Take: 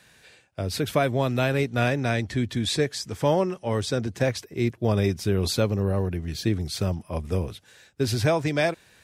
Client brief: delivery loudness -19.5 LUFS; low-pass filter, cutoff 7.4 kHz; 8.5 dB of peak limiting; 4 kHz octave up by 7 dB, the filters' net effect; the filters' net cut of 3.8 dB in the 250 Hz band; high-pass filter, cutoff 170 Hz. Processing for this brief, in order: high-pass 170 Hz; low-pass 7.4 kHz; peaking EQ 250 Hz -3.5 dB; peaking EQ 4 kHz +8.5 dB; trim +9.5 dB; peak limiter -8 dBFS

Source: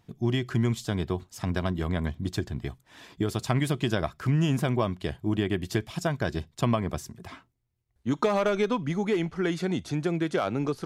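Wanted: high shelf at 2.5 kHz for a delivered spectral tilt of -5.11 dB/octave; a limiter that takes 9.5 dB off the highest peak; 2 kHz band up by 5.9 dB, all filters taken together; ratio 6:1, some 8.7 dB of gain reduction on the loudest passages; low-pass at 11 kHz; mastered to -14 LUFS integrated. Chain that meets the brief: low-pass 11 kHz; peaking EQ 2 kHz +5.5 dB; treble shelf 2.5 kHz +4.5 dB; compression 6:1, threshold -29 dBFS; trim +22.5 dB; peak limiter -2 dBFS

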